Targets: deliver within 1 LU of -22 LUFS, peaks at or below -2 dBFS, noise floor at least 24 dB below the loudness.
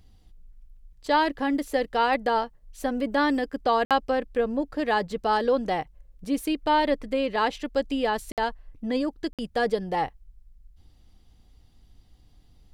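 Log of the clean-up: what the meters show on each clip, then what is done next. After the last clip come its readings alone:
dropouts 3; longest dropout 57 ms; loudness -26.5 LUFS; peak level -10.0 dBFS; loudness target -22.0 LUFS
-> interpolate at 3.85/8.32/9.33 s, 57 ms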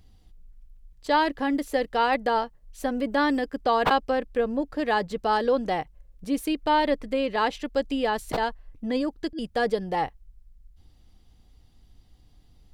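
dropouts 0; loudness -26.0 LUFS; peak level -10.0 dBFS; loudness target -22.0 LUFS
-> trim +4 dB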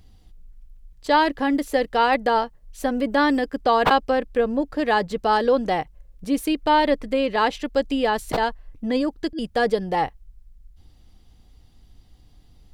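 loudness -22.0 LUFS; peak level -6.0 dBFS; noise floor -53 dBFS

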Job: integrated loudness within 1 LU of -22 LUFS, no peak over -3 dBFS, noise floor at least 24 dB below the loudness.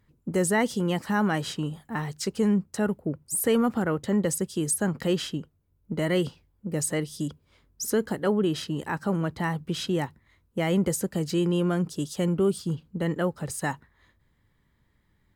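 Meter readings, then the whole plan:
loudness -27.5 LUFS; peak level -13.5 dBFS; loudness target -22.0 LUFS
-> trim +5.5 dB

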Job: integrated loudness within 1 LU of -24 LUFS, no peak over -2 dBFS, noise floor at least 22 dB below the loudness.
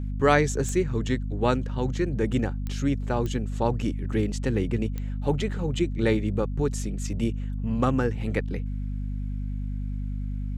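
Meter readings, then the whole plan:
clicks found 4; hum 50 Hz; highest harmonic 250 Hz; hum level -27 dBFS; loudness -27.5 LUFS; peak level -7.5 dBFS; loudness target -24.0 LUFS
-> de-click; hum notches 50/100/150/200/250 Hz; trim +3.5 dB

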